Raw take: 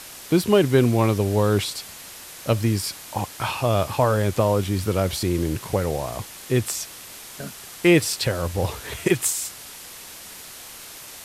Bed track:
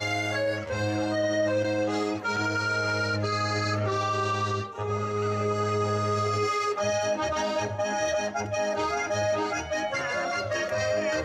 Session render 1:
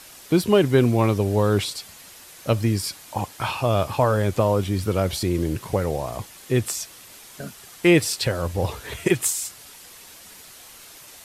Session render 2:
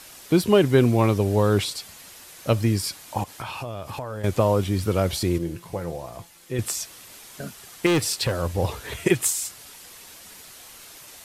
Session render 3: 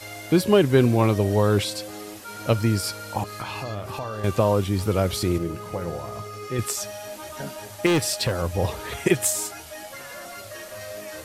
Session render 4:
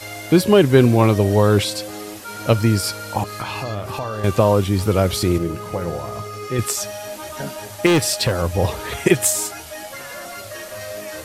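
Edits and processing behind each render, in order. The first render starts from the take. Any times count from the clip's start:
denoiser 6 dB, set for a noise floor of -41 dBFS
3.23–4.24 compressor 5:1, threshold -30 dBFS; 5.38–6.59 resonator 170 Hz, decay 0.23 s, mix 70%; 7.86–8.4 hard clip -17.5 dBFS
add bed track -10.5 dB
gain +5 dB; limiter -1 dBFS, peak gain reduction 1.5 dB

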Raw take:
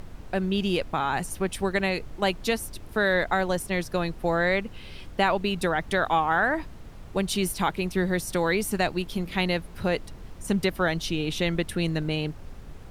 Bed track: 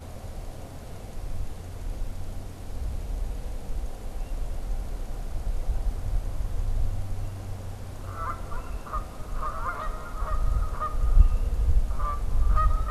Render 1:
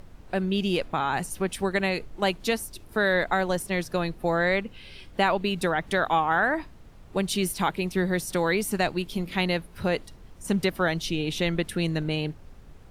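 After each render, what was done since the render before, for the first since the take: noise print and reduce 6 dB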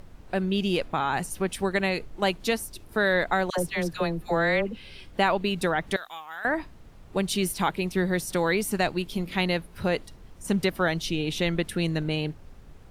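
3.5–4.77 dispersion lows, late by 78 ms, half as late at 940 Hz; 5.96–6.45 pre-emphasis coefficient 0.97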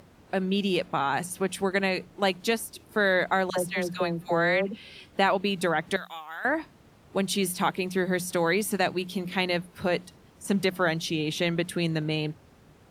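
HPF 110 Hz 12 dB/oct; notches 60/120/180 Hz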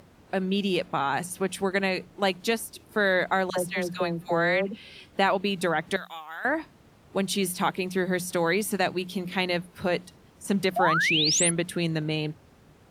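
10.76–11.51 painted sound rise 650–11000 Hz -24 dBFS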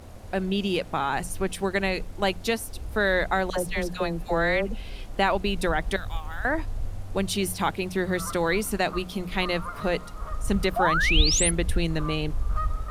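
add bed track -4.5 dB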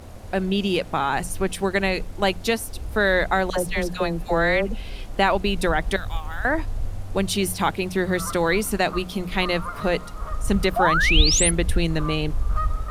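gain +3.5 dB

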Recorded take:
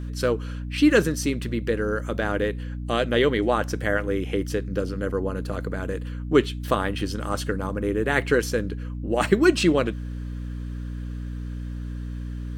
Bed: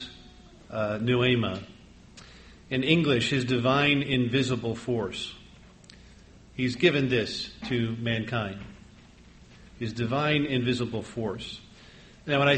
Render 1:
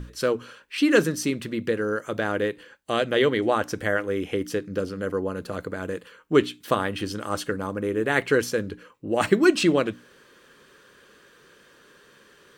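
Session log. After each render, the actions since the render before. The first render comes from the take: notches 60/120/180/240/300 Hz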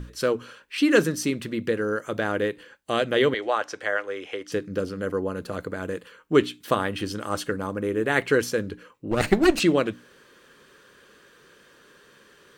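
3.34–4.52 three-band isolator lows -21 dB, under 440 Hz, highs -19 dB, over 7600 Hz; 9.11–9.6 minimum comb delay 0.45 ms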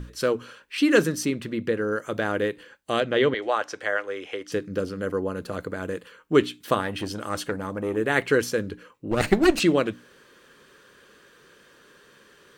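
1.25–1.92 high shelf 4200 Hz -6 dB; 3–3.42 air absorption 84 m; 6.8–7.97 core saturation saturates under 770 Hz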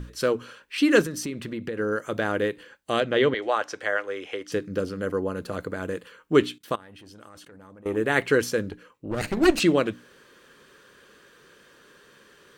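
1.01–1.78 compressor 4:1, threshold -28 dBFS; 6.58–7.86 level quantiser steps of 24 dB; 8.69–9.37 tube stage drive 23 dB, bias 0.6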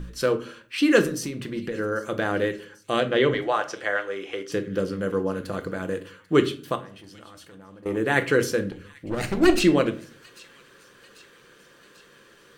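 thin delay 0.792 s, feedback 60%, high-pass 2700 Hz, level -19.5 dB; shoebox room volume 340 m³, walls furnished, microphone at 0.76 m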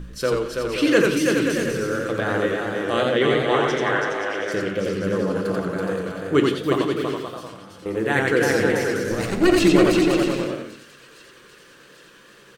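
bouncing-ball echo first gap 0.33 s, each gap 0.6×, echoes 5; warbling echo 88 ms, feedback 30%, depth 112 cents, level -3 dB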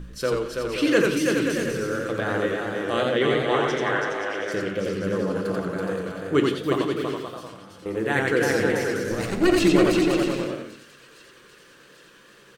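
gain -2.5 dB

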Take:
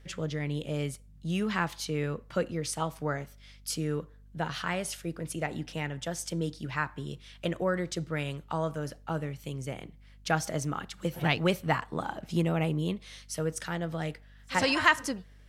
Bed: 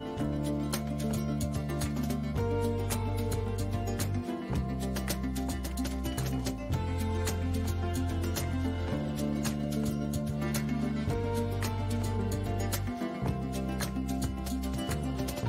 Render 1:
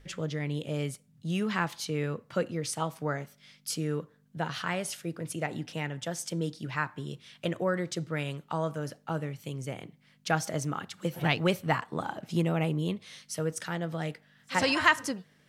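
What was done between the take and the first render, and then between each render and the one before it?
de-hum 50 Hz, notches 2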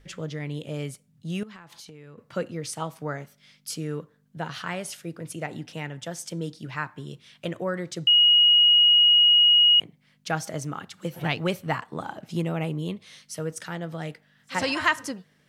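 1.43–2.18 compressor 12:1, threshold -41 dBFS; 8.07–9.8 bleep 2890 Hz -13.5 dBFS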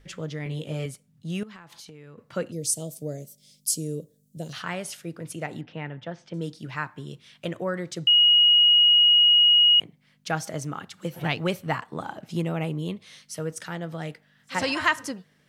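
0.44–0.86 doubler 19 ms -4 dB; 2.52–4.53 EQ curve 620 Hz 0 dB, 880 Hz -23 dB, 1400 Hz -26 dB, 3900 Hz -1 dB, 7800 Hz +12 dB; 5.61–6.34 Bessel low-pass 2500 Hz, order 4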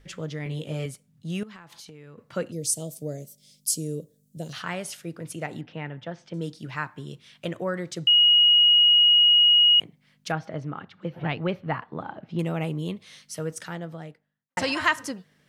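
10.32–12.39 air absorption 330 m; 13.54–14.57 studio fade out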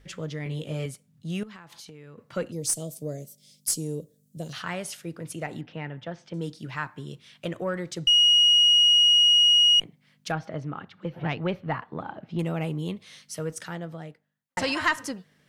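one diode to ground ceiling -11 dBFS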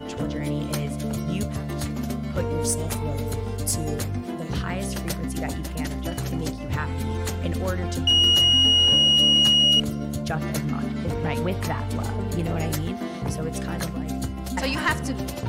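add bed +3.5 dB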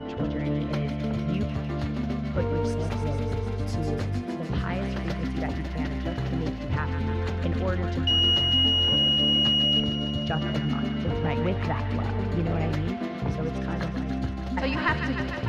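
air absorption 260 m; thin delay 0.151 s, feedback 80%, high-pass 1500 Hz, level -6 dB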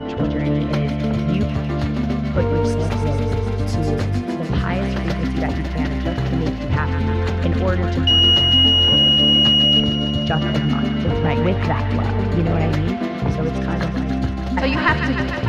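gain +8 dB

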